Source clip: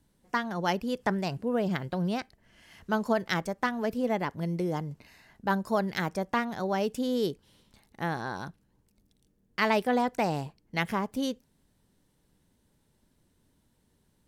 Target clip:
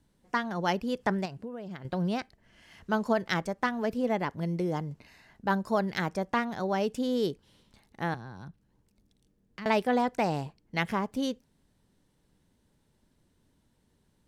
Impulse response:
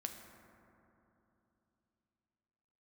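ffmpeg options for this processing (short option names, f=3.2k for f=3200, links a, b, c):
-filter_complex "[0:a]asettb=1/sr,asplit=3[a][b][c];[a]atrim=end=1.254[d];[b]atrim=start=1.25:end=1.85,asetpts=PTS-STARTPTS,afade=t=in:d=0.004:c=qsin,afade=t=out:st=0.596:d=0.004:c=qsin,acompressor=threshold=-36dB:ratio=16[e];[c]atrim=start=1.846[f];[d][e]acrossfade=d=0.004:c1=hsin:c2=qsin[g];[g][f]acrossfade=d=0.004:c1=qsin:c2=hsin,highshelf=f=12k:g=-11,asettb=1/sr,asplit=3[h][i][j];[h]atrim=end=8.144[k];[i]atrim=start=8.14:end=9.66,asetpts=PTS-STARTPTS,afade=t=in:d=0.004:c=qsin,afade=t=out:st=1.516:d=0.004:c=qsin,acrossover=split=200[l][m];[m]acompressor=threshold=-47dB:ratio=4[n];[l][n]amix=inputs=2:normalize=0[o];[j]atrim=start=9.656[p];[k][o]acrossfade=d=0.004:c1=hsin:c2=qsin[q];[q][p]acrossfade=d=0.004:c1=qsin:c2=hsin"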